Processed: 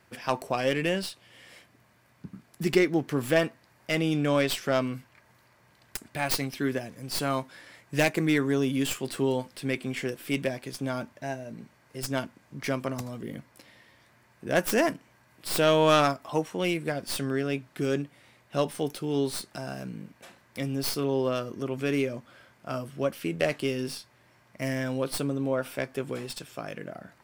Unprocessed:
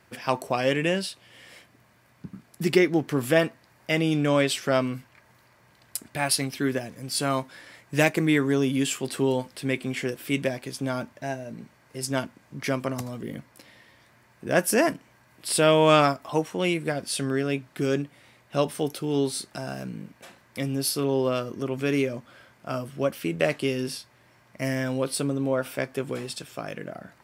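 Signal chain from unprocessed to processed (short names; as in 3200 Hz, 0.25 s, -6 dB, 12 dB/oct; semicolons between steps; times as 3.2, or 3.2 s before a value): tracing distortion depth 0.13 ms; gain -2.5 dB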